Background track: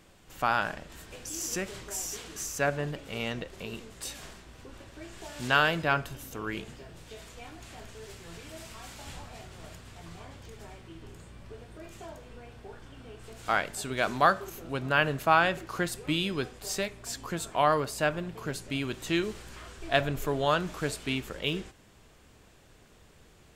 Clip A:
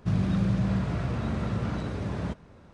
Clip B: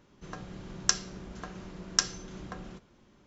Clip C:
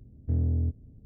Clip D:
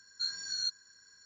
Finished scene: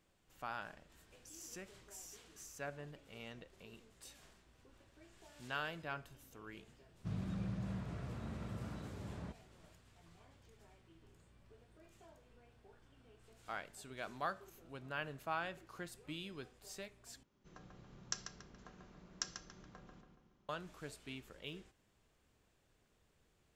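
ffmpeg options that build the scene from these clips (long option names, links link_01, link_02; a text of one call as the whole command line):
ffmpeg -i bed.wav -i cue0.wav -i cue1.wav -filter_complex "[0:a]volume=-17.5dB[link_01];[2:a]asplit=2[link_02][link_03];[link_03]adelay=141,lowpass=frequency=3200:poles=1,volume=-5dB,asplit=2[link_04][link_05];[link_05]adelay=141,lowpass=frequency=3200:poles=1,volume=0.5,asplit=2[link_06][link_07];[link_07]adelay=141,lowpass=frequency=3200:poles=1,volume=0.5,asplit=2[link_08][link_09];[link_09]adelay=141,lowpass=frequency=3200:poles=1,volume=0.5,asplit=2[link_10][link_11];[link_11]adelay=141,lowpass=frequency=3200:poles=1,volume=0.5,asplit=2[link_12][link_13];[link_13]adelay=141,lowpass=frequency=3200:poles=1,volume=0.5[link_14];[link_02][link_04][link_06][link_08][link_10][link_12][link_14]amix=inputs=7:normalize=0[link_15];[link_01]asplit=2[link_16][link_17];[link_16]atrim=end=17.234[link_18];[link_15]atrim=end=3.26,asetpts=PTS-STARTPTS,volume=-16dB[link_19];[link_17]atrim=start=20.486[link_20];[1:a]atrim=end=2.73,asetpts=PTS-STARTPTS,volume=-15.5dB,afade=type=in:duration=0.004:curve=hsin,afade=type=out:start_time=2.726:duration=0.004:curve=hsin,adelay=6990[link_21];[link_18][link_19]acrossfade=duration=0.004:curve1=hsin:curve2=hsin[link_22];[link_22][link_20]acrossfade=duration=0.004:curve1=hsin:curve2=hsin[link_23];[link_23][link_21]amix=inputs=2:normalize=0" out.wav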